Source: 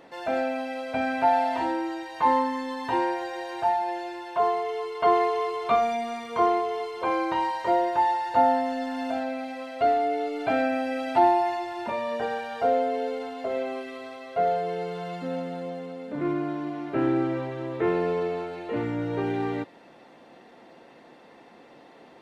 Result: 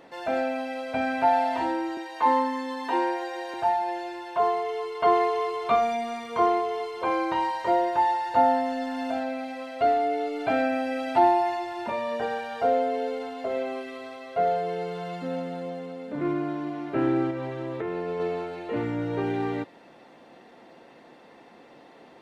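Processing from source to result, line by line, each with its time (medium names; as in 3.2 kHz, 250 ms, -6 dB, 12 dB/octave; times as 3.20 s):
1.97–3.54 s: steep high-pass 210 Hz
17.30–18.20 s: compression, threshold -27 dBFS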